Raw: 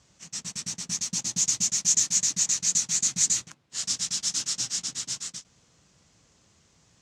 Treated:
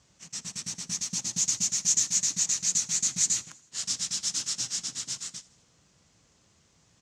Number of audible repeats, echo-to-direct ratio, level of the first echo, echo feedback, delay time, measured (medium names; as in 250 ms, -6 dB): 3, -20.0 dB, -22.0 dB, 59%, 80 ms